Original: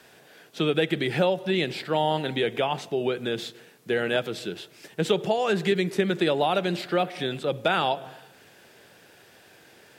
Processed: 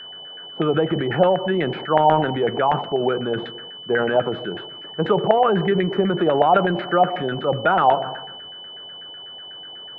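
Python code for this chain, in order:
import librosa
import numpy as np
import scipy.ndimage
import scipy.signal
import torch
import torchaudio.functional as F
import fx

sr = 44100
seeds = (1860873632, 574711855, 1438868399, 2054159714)

y = fx.filter_lfo_lowpass(x, sr, shape='saw_down', hz=8.1, low_hz=710.0, high_hz=1800.0, q=4.3)
y = fx.high_shelf(y, sr, hz=2100.0, db=-9.5)
y = fx.transient(y, sr, attack_db=0, sustain_db=7)
y = y + 10.0 ** (-37.0 / 20.0) * np.sin(2.0 * np.pi * 3000.0 * np.arange(len(y)) / sr)
y = fx.high_shelf(y, sr, hz=6400.0, db=-8.0)
y = F.gain(torch.from_numpy(y), 3.0).numpy()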